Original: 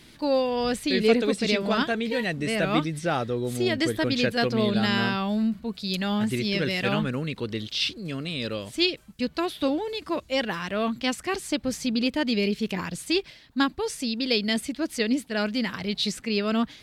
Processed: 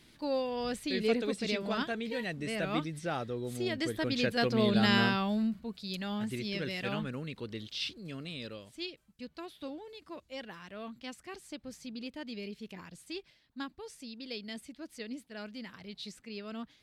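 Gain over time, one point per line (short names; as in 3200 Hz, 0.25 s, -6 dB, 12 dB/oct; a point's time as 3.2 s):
3.82 s -9 dB
4.95 s -1.5 dB
5.83 s -10 dB
8.32 s -10 dB
8.76 s -17 dB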